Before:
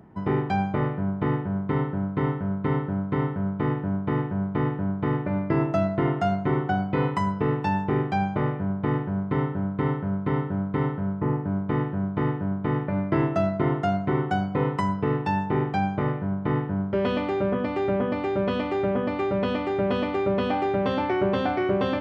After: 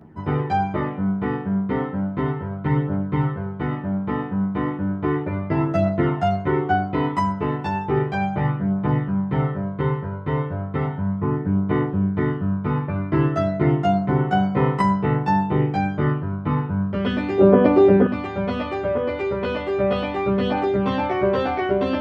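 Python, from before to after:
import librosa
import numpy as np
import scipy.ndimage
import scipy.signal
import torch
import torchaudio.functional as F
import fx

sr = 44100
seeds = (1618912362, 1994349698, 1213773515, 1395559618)

y = fx.peak_eq(x, sr, hz=460.0, db=11.0, octaves=2.2, at=(17.38, 18.06))
y = fx.chorus_voices(y, sr, voices=2, hz=0.17, base_ms=13, depth_ms=2.2, mix_pct=60)
y = y * 10.0 ** (5.5 / 20.0)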